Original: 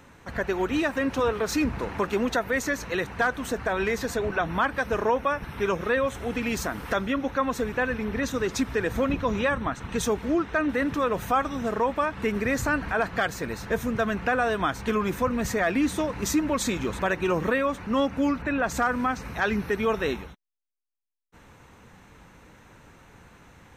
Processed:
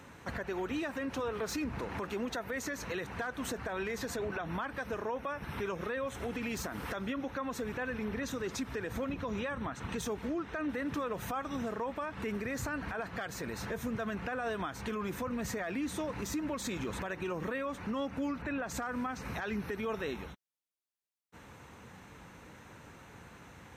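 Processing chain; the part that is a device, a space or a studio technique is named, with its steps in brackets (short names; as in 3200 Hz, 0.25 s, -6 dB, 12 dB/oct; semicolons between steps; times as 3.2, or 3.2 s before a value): podcast mastering chain (HPF 63 Hz; de-esser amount 60%; compressor 2.5:1, threshold -33 dBFS, peak gain reduction 9.5 dB; limiter -27.5 dBFS, peak gain reduction 8 dB; MP3 112 kbps 48000 Hz)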